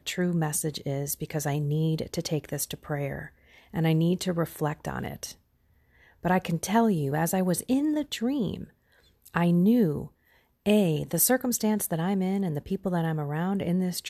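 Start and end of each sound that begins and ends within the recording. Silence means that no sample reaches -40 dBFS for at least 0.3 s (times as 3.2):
3.74–5.32
6.23–8.64
9.26–10.07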